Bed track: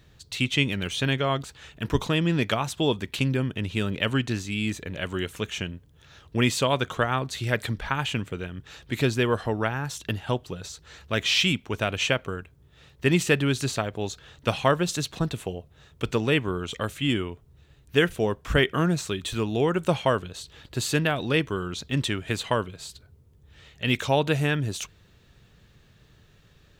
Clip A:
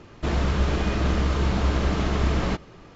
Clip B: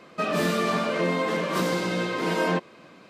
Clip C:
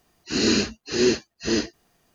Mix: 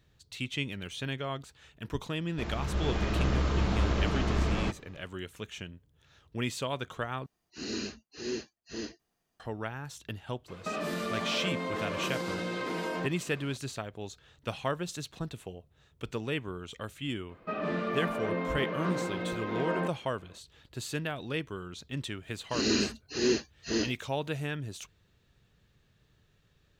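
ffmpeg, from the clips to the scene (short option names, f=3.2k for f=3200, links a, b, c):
-filter_complex "[3:a]asplit=2[a][b];[2:a]asplit=2[c][d];[0:a]volume=-10.5dB[e];[1:a]dynaudnorm=f=430:g=3:m=11.5dB[f];[c]acompressor=threshold=-29dB:ratio=6:attack=3.2:release=140:knee=1:detection=peak[g];[d]lowpass=2.3k[h];[e]asplit=2[i][j];[i]atrim=end=7.264[k];[a]atrim=end=2.14,asetpts=PTS-STARTPTS,volume=-15.5dB[l];[j]atrim=start=9.396[m];[f]atrim=end=2.95,asetpts=PTS-STARTPTS,volume=-14dB,afade=t=in:d=0.004:c=hsin,afade=t=out:st=2.946:d=0.004:c=hsin,adelay=2150[n];[g]atrim=end=3.09,asetpts=PTS-STARTPTS,volume=-1.5dB,afade=t=in:d=0.004:c=hsin,afade=t=out:st=3.086:d=0.004:c=hsin,adelay=10480[o];[h]atrim=end=3.09,asetpts=PTS-STARTPTS,volume=-7.5dB,afade=t=in:d=0.004:c=hsin,afade=t=out:st=3.086:d=0.004:c=hsin,adelay=17290[p];[b]atrim=end=2.14,asetpts=PTS-STARTPTS,volume=-7dB,afade=t=in:d=0.004:c=hsin,afade=t=out:st=2.136:d=0.004:c=hsin,adelay=22230[q];[k][l]acrossfade=d=0.004:c1=hsin:c2=hsin[r];[r][m]acrossfade=d=0.004:c1=hsin:c2=hsin[s];[s][n][o][p][q]amix=inputs=5:normalize=0"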